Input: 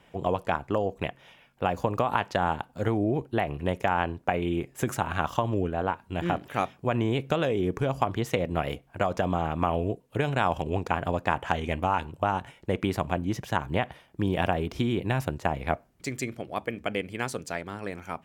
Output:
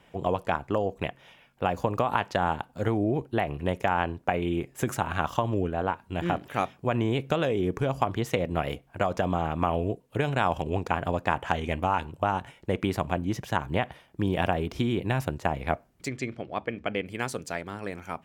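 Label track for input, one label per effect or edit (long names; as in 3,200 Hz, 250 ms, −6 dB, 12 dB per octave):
16.080000	17.060000	low-pass filter 4,500 Hz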